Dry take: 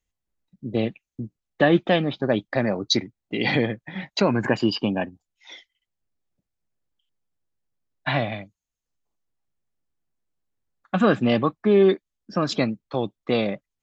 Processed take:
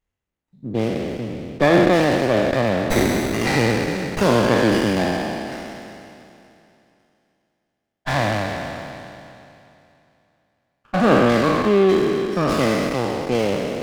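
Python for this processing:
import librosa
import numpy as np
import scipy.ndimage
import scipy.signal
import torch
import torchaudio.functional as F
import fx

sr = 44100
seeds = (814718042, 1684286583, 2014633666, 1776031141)

y = fx.spec_trails(x, sr, decay_s=2.81)
y = fx.running_max(y, sr, window=9)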